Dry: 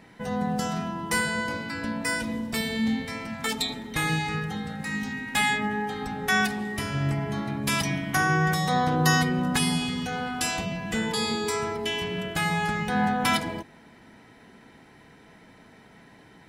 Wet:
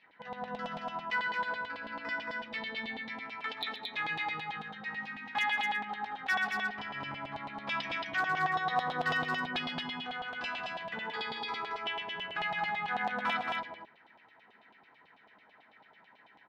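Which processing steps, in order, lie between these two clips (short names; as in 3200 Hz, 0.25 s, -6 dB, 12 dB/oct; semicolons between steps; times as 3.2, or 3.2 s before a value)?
LPF 4700 Hz 24 dB/oct; low shelf 350 Hz +5.5 dB; notches 60/120/180/240/300/360/420 Hz; LFO band-pass saw down 9.1 Hz 730–3500 Hz; overloaded stage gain 22 dB; loudspeakers at several distances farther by 44 m -12 dB, 77 m -3 dB; gain -2 dB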